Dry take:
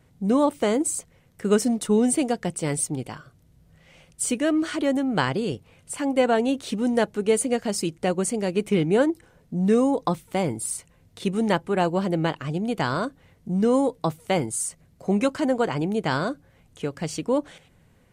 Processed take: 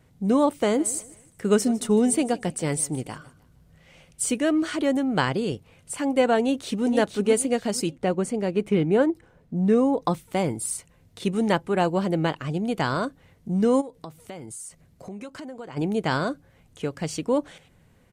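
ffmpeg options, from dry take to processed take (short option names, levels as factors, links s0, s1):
-filter_complex "[0:a]asettb=1/sr,asplit=3[s0][s1][s2];[s0]atrim=end=0.554[s3];[s1]atrim=start=0.55:end=4.36,asetpts=PTS-STARTPTS,afade=t=in:d=0.004:c=qsin,afade=t=out:st=3.806:d=0.004:c=qsin,aecho=1:1:154|308|462:0.1|0.036|0.013,atrim=end_sample=168021[s4];[s2]atrim=start=4.356[s5];[s3][s4]acrossfade=d=0.004:c1=hsin:c2=qsin[s6];[s6][s5]acrossfade=d=0.004:c1=qsin:c2=hsin,asplit=2[s7][s8];[s8]afade=t=in:st=6.39:d=0.01,afade=t=out:st=6.86:d=0.01,aecho=0:1:470|940|1410|1880:0.473151|0.141945|0.0425836|0.0127751[s9];[s7][s9]amix=inputs=2:normalize=0,asettb=1/sr,asplit=3[s10][s11][s12];[s10]atrim=end=7.914[s13];[s11]atrim=start=7.91:end=10.02,asetpts=PTS-STARTPTS,afade=t=in:d=0.004:c=qsin,afade=t=out:st=2.106:d=0.004:c=qsin,highshelf=f=3600:g=-10.5[s14];[s12]atrim=start=10.016[s15];[s13][s14]acrossfade=d=0.004:c1=hsin:c2=qsin[s16];[s16][s15]acrossfade=d=0.004:c1=qsin:c2=hsin,asplit=3[s17][s18][s19];[s17]afade=t=out:st=13.8:d=0.02[s20];[s18]acompressor=threshold=0.0158:ratio=5:attack=3.2:release=140:knee=1:detection=peak,afade=t=in:st=13.8:d=0.02,afade=t=out:st=15.76:d=0.02[s21];[s19]afade=t=in:st=15.76:d=0.02[s22];[s20][s21][s22]amix=inputs=3:normalize=0"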